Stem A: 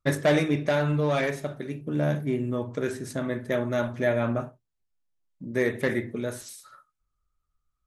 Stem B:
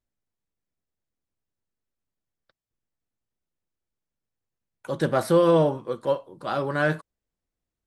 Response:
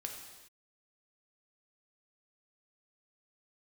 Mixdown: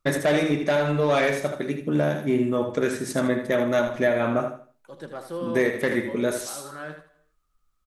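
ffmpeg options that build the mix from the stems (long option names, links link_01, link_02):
-filter_complex "[0:a]acontrast=84,volume=0dB,asplit=2[link_01][link_02];[link_02]volume=-8dB[link_03];[1:a]volume=-15dB,asplit=3[link_04][link_05][link_06];[link_05]volume=-12dB[link_07];[link_06]volume=-6.5dB[link_08];[2:a]atrim=start_sample=2205[link_09];[link_07][link_09]afir=irnorm=-1:irlink=0[link_10];[link_03][link_08]amix=inputs=2:normalize=0,aecho=0:1:79|158|237|316:1|0.28|0.0784|0.022[link_11];[link_01][link_04][link_10][link_11]amix=inputs=4:normalize=0,equalizer=frequency=81:width=1.1:gain=-12,alimiter=limit=-11.5dB:level=0:latency=1:release=352"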